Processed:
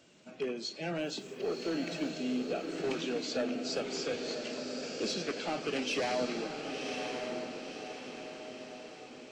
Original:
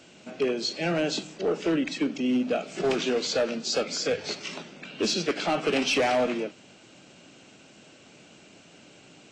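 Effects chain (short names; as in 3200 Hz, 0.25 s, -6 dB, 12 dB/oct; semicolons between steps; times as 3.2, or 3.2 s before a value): bin magnitudes rounded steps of 15 dB; 0.99–2.09 added noise white -66 dBFS; diffused feedback echo 1.056 s, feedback 51%, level -4 dB; gain -9 dB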